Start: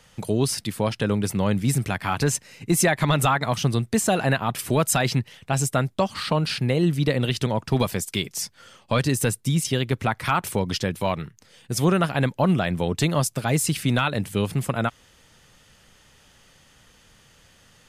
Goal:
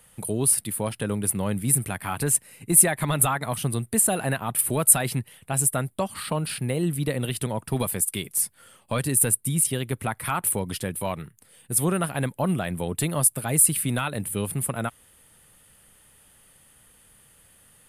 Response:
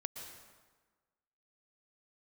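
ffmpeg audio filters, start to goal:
-af "highshelf=f=7700:t=q:w=3:g=10.5,volume=0.596"

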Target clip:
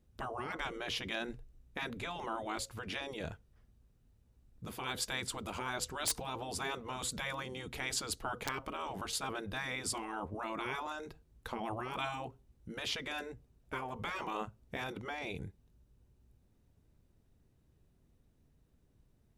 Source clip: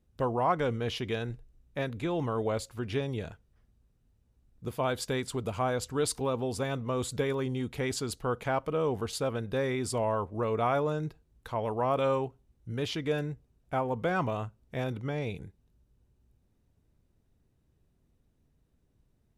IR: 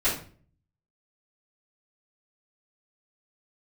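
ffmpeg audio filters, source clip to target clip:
-af "afftfilt=real='re*lt(hypot(re,im),0.0891)':imag='im*lt(hypot(re,im),0.0891)':win_size=1024:overlap=0.75,aeval=exprs='(mod(15*val(0)+1,2)-1)/15':c=same,volume=1.12"

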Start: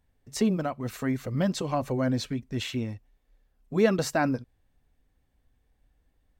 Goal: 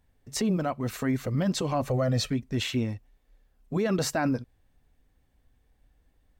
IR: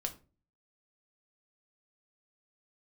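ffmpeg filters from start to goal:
-filter_complex "[0:a]asettb=1/sr,asplit=3[s0][s1][s2];[s0]atrim=end=1.904[s3];[s1]atrim=start=1.9:end=2.3,asetpts=PTS-STARTPTS,afade=t=in:d=0.004:c=qsin,afade=t=out:st=0.396:d=0.004:c=qsin,aecho=1:1:1.6:0.84,atrim=end_sample=17640[s4];[s2]atrim=start=2.296[s5];[s3][s4]acrossfade=d=0.004:c1=hsin:c2=qsin[s6];[s6][s5]acrossfade=d=0.004:c1=qsin:c2=hsin,alimiter=limit=0.0841:level=0:latency=1:release=14,volume=1.41"

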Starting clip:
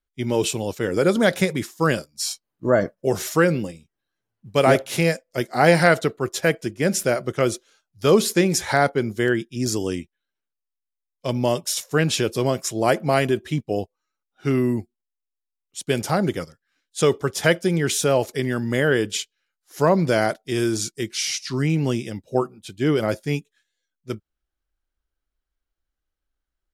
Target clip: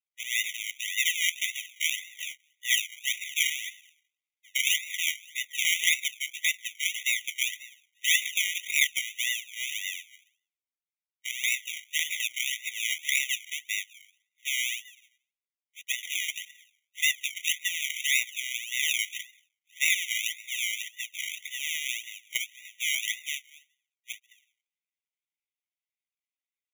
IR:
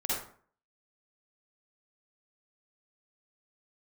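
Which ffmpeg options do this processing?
-filter_complex "[0:a]asplit=2[s0][s1];[1:a]atrim=start_sample=2205,lowpass=4000,adelay=140[s2];[s1][s2]afir=irnorm=-1:irlink=0,volume=0.0422[s3];[s0][s3]amix=inputs=2:normalize=0,acrusher=samples=39:mix=1:aa=0.000001:lfo=1:lforange=23.4:lforate=1.8,afftfilt=real='re*eq(mod(floor(b*sr/1024/1900),2),1)':imag='im*eq(mod(floor(b*sr/1024/1900),2),1)':win_size=1024:overlap=0.75,volume=1.5"

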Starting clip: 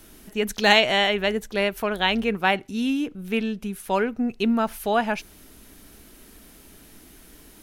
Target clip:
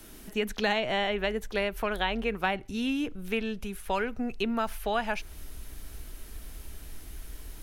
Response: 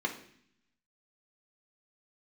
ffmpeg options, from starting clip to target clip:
-filter_complex "[0:a]asubboost=boost=7.5:cutoff=82,acrossover=split=260|1300|3300[s0][s1][s2][s3];[s0]acompressor=threshold=0.0158:ratio=4[s4];[s1]acompressor=threshold=0.0355:ratio=4[s5];[s2]acompressor=threshold=0.0224:ratio=4[s6];[s3]acompressor=threshold=0.00501:ratio=4[s7];[s4][s5][s6][s7]amix=inputs=4:normalize=0"

